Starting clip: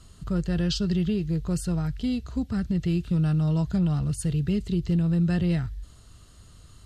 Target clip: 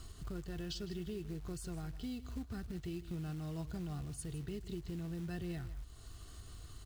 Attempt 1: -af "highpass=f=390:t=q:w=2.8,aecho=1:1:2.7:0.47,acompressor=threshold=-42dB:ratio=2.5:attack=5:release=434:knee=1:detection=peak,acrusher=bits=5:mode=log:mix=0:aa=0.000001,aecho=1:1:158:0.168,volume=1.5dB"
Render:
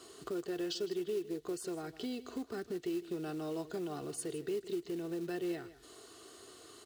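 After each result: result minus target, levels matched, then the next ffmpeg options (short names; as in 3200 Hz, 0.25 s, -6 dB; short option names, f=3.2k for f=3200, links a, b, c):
500 Hz band +6.5 dB; compressor: peak gain reduction -2 dB
-af "aecho=1:1:2.7:0.47,acompressor=threshold=-42dB:ratio=2.5:attack=5:release=434:knee=1:detection=peak,acrusher=bits=5:mode=log:mix=0:aa=0.000001,aecho=1:1:158:0.168,volume=1.5dB"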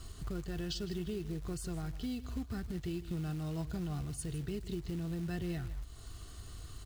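compressor: peak gain reduction -4 dB
-af "aecho=1:1:2.7:0.47,acompressor=threshold=-48.5dB:ratio=2.5:attack=5:release=434:knee=1:detection=peak,acrusher=bits=5:mode=log:mix=0:aa=0.000001,aecho=1:1:158:0.168,volume=1.5dB"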